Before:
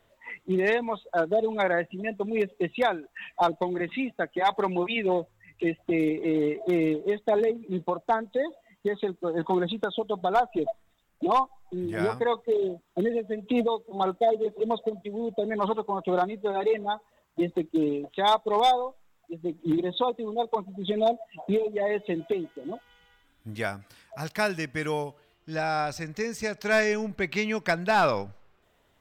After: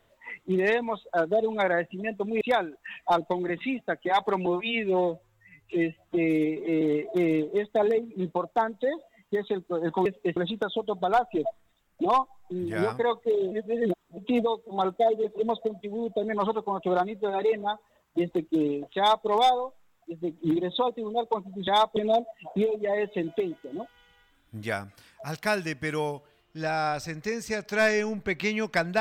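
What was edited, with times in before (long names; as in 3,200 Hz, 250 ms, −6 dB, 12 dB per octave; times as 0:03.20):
0:02.41–0:02.72: move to 0:09.58
0:04.77–0:06.34: time-stretch 1.5×
0:12.73–0:13.39: reverse
0:18.19–0:18.48: duplicate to 0:20.89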